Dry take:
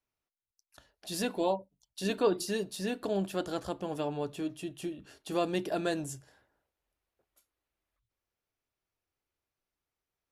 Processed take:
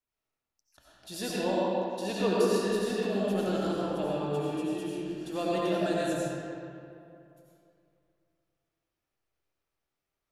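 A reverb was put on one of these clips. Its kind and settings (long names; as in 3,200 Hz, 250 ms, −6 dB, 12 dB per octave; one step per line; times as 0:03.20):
comb and all-pass reverb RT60 2.6 s, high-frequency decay 0.6×, pre-delay 50 ms, DRR −7 dB
level −4.5 dB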